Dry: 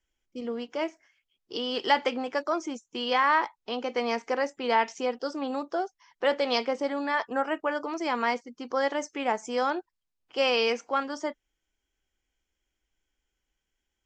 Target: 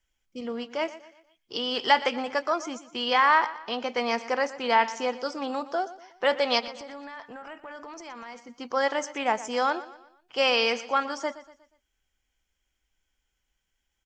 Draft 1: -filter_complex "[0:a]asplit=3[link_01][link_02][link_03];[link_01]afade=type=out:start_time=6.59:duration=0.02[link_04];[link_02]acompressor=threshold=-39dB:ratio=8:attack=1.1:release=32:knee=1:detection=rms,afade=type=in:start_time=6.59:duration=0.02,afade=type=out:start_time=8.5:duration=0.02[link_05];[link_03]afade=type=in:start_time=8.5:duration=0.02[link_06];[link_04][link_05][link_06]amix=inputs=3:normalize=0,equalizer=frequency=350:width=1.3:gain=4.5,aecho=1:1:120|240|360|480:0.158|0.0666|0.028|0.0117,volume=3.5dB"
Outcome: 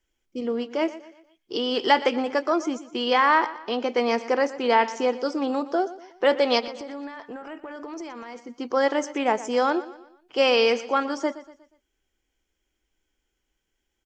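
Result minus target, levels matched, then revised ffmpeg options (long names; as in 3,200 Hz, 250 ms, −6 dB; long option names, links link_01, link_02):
250 Hz band +5.0 dB
-filter_complex "[0:a]asplit=3[link_01][link_02][link_03];[link_01]afade=type=out:start_time=6.59:duration=0.02[link_04];[link_02]acompressor=threshold=-39dB:ratio=8:attack=1.1:release=32:knee=1:detection=rms,afade=type=in:start_time=6.59:duration=0.02,afade=type=out:start_time=8.5:duration=0.02[link_05];[link_03]afade=type=in:start_time=8.5:duration=0.02[link_06];[link_04][link_05][link_06]amix=inputs=3:normalize=0,equalizer=frequency=350:width=1.3:gain=-7,aecho=1:1:120|240|360|480:0.158|0.0666|0.028|0.0117,volume=3.5dB"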